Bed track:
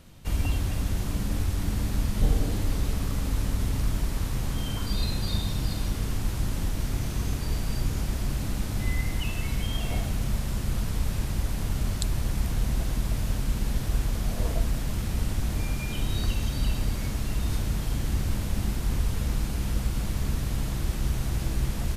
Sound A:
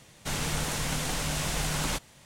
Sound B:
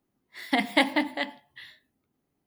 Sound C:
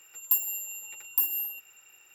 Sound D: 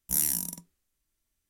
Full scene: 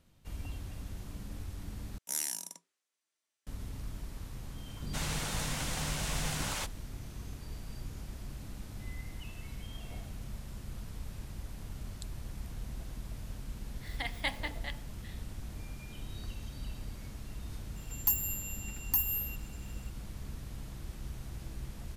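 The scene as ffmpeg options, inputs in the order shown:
-filter_complex "[0:a]volume=-15dB[a];[4:a]highpass=500,lowpass=7.7k[b];[1:a]acrossover=split=400[c][d];[d]adelay=130[e];[c][e]amix=inputs=2:normalize=0[f];[2:a]highpass=f=1.3k:p=1[g];[3:a]aeval=exprs='clip(val(0),-1,0.0891)':c=same[h];[a]asplit=2[i][j];[i]atrim=end=1.984[k];[b]atrim=end=1.49,asetpts=PTS-STARTPTS,volume=-1.5dB[l];[j]atrim=start=3.466[m];[f]atrim=end=2.25,asetpts=PTS-STARTPTS,volume=-5dB,afade=t=in:d=0.004:c=hsin,afade=t=out:st=2.246:d=0.004:c=hsin,adelay=4550[n];[g]atrim=end=2.46,asetpts=PTS-STARTPTS,volume=-9dB,afade=t=in:d=0.004:c=hsin,afade=t=out:st=2.456:d=0.004:c=hsin,adelay=13470[o];[h]atrim=end=2.14,asetpts=PTS-STARTPTS,volume=-3dB,afade=t=in:d=0.004:c=hsin,afade=t=out:st=2.136:d=0.004:c=hsin,adelay=17760[p];[k][l]acrossfade=d=0.004:c1=hsin:c2=hsin[q];[q][m]acrossfade=d=0.004:c1=hsin:c2=hsin[r];[r][n][o][p]amix=inputs=4:normalize=0"

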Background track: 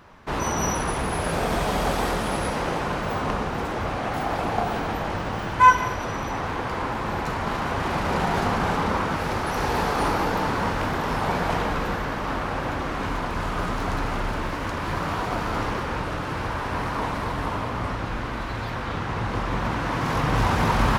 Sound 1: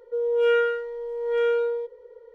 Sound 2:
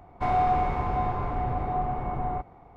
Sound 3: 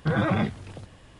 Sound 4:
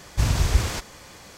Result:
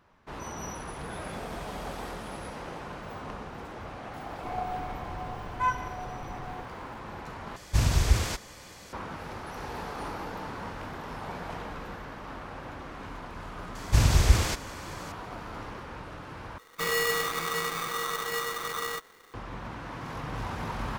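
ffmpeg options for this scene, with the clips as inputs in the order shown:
-filter_complex "[2:a]asplit=2[a][b];[4:a]asplit=2[c][d];[0:a]volume=-13.5dB[e];[3:a]aemphasis=mode=production:type=bsi[f];[a]aeval=exprs='val(0)+0.5*0.01*sgn(val(0))':c=same[g];[b]aeval=exprs='val(0)*sgn(sin(2*PI*1200*n/s))':c=same[h];[e]asplit=3[i][j][k];[i]atrim=end=7.564[l];[c]atrim=end=1.37,asetpts=PTS-STARTPTS,volume=-2.5dB[m];[j]atrim=start=8.926:end=16.584[n];[h]atrim=end=2.76,asetpts=PTS-STARTPTS,volume=-4.5dB[o];[k]atrim=start=19.336[p];[f]atrim=end=1.19,asetpts=PTS-STARTPTS,volume=-16.5dB,afade=t=in:d=0.004:c=hsin,afade=t=out:st=1.186:d=0.004:c=hsin,adelay=940[q];[g]atrim=end=2.76,asetpts=PTS-STARTPTS,volume=-12.5dB,afade=t=in:d=0.004:c=hsin,afade=t=out:st=2.756:d=0.004:c=hsin,adelay=4230[r];[d]atrim=end=1.37,asetpts=PTS-STARTPTS,afade=t=in:d=0.004:c=hsin,afade=t=out:st=1.366:d=0.004:c=hsin,adelay=13750[s];[l][m]acrossfade=d=0.004:c1=hsin:c2=hsin[t];[t][n]acrossfade=d=0.004:c1=hsin:c2=hsin[u];[u][o]acrossfade=d=0.004:c1=hsin:c2=hsin[v];[v][p]acrossfade=d=0.004:c1=hsin:c2=hsin[w];[w][q][r][s]amix=inputs=4:normalize=0"

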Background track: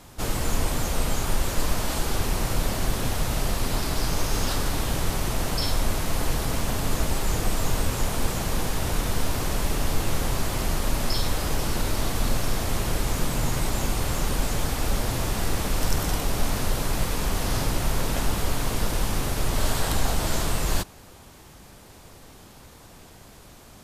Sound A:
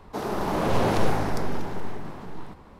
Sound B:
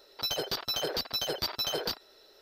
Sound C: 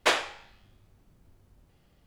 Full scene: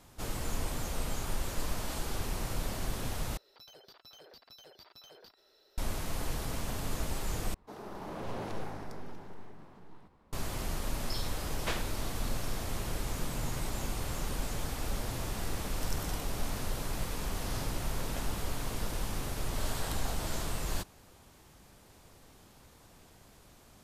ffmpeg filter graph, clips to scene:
-filter_complex "[0:a]volume=-10dB[a];[2:a]acompressor=threshold=-53dB:ratio=2.5:attack=4:release=55:knee=1:detection=rms[b];[a]asplit=3[c][d][e];[c]atrim=end=3.374[f];[b]atrim=end=2.41,asetpts=PTS-STARTPTS,volume=-8dB[g];[d]atrim=start=5.776:end=7.544[h];[1:a]atrim=end=2.79,asetpts=PTS-STARTPTS,volume=-16dB[i];[e]atrim=start=10.326[j];[3:a]atrim=end=2.06,asetpts=PTS-STARTPTS,volume=-13dB,afade=t=in:d=0.004:c=hsin,afade=t=out:st=2.056:d=0.004:c=hsin,adelay=11610[k];[f][g]acrossfade=d=0.004:c1=hsin:c2=hsin[l];[l][h]acrossfade=d=0.004:c1=hsin:c2=hsin[m];[m][i]acrossfade=d=0.004:c1=hsin:c2=hsin[n];[n][j]acrossfade=d=0.004:c1=hsin:c2=hsin[o];[o][k]amix=inputs=2:normalize=0"

